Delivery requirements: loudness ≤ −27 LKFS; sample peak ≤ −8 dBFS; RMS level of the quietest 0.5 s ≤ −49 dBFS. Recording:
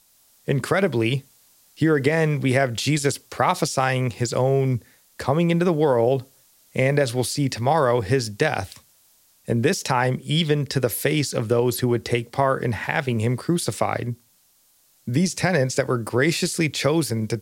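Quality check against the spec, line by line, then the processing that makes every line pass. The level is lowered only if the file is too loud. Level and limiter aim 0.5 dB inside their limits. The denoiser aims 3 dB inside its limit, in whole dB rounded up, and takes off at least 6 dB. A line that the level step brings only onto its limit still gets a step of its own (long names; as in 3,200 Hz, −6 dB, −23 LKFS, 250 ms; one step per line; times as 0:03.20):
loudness −22.0 LKFS: out of spec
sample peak −6.0 dBFS: out of spec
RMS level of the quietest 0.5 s −60 dBFS: in spec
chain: level −5.5 dB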